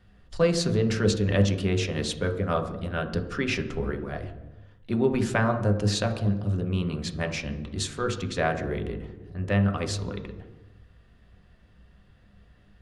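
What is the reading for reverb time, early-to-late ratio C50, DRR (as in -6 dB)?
1.0 s, 10.0 dB, 4.0 dB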